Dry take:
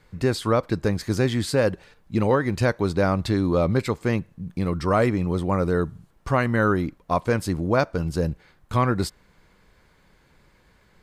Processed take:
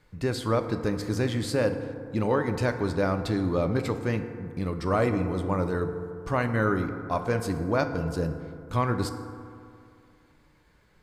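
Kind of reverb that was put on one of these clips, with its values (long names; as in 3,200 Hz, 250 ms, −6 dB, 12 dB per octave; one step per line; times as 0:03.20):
feedback delay network reverb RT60 2.4 s, low-frequency decay 1×, high-frequency decay 0.35×, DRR 7 dB
level −5 dB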